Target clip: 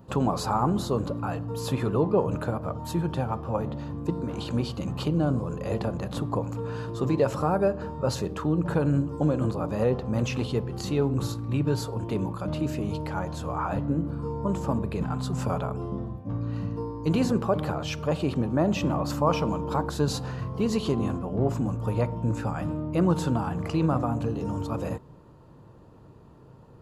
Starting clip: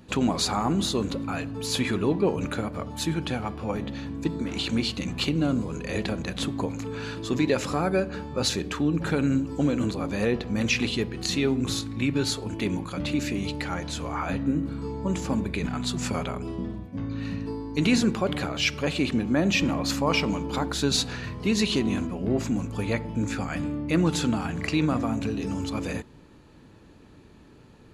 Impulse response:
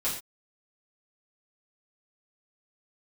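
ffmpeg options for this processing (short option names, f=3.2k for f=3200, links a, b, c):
-af "equalizer=f=125:t=o:w=1:g=8,equalizer=f=250:t=o:w=1:g=-4,equalizer=f=500:t=o:w=1:g=4,equalizer=f=1k:t=o:w=1:g=7,equalizer=f=2k:t=o:w=1:g=-10,equalizer=f=4k:t=o:w=1:g=-6,equalizer=f=8k:t=o:w=1:g=-6,asetrate=45938,aresample=44100,volume=-2dB"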